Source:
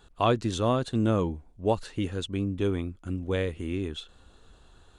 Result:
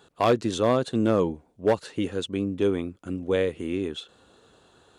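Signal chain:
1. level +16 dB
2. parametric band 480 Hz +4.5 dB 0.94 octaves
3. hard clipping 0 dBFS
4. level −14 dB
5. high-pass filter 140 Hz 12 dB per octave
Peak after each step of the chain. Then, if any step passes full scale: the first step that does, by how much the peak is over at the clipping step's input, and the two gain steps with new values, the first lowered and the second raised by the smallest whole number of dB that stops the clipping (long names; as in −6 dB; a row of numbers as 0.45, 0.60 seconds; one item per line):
+6.5, +8.0, 0.0, −14.0, −8.5 dBFS
step 1, 8.0 dB
step 1 +8 dB, step 4 −6 dB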